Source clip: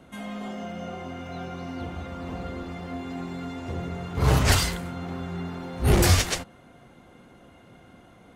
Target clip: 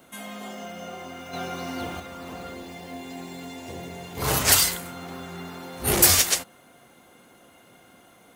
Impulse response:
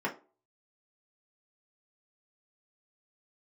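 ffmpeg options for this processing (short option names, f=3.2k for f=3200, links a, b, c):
-filter_complex "[0:a]aemphasis=mode=production:type=bsi,asettb=1/sr,asplit=3[a][b][c];[a]atrim=end=1.334[d];[b]atrim=start=1.33:end=2,asetpts=PTS-STARTPTS,afade=t=in:d=0.004:c=qsin,afade=t=out:st=0.666:d=0.004:c=qsin,acontrast=37[e];[c]atrim=start=1.996[f];[d][e]acrossfade=d=0.004:c1=hsin:c2=qsin[g];[g][f]acrossfade=d=0.004:c1=qsin:c2=hsin,asettb=1/sr,asplit=3[h][i][j];[h]atrim=end=2.544[k];[i]atrim=start=2.54:end=4.22,asetpts=PTS-STARTPTS,afade=t=in:d=0.004:c=qsin,afade=t=out:st=1.676:d=0.004:c=qsin,equalizer=f=1.3k:t=o:w=0.3:g=-13.5[l];[j]atrim=start=4.216[m];[k][l]acrossfade=d=0.004:c1=hsin:c2=qsin[n];[n][m]acrossfade=d=0.004:c1=qsin:c2=hsin"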